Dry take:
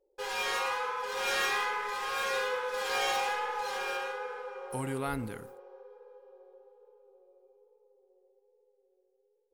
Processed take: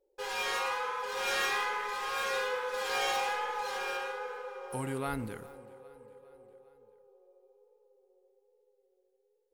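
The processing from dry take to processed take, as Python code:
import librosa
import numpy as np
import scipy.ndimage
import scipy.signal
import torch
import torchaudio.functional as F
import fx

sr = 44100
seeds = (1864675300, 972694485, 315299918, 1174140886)

y = fx.echo_feedback(x, sr, ms=404, feedback_pct=54, wet_db=-21)
y = y * librosa.db_to_amplitude(-1.0)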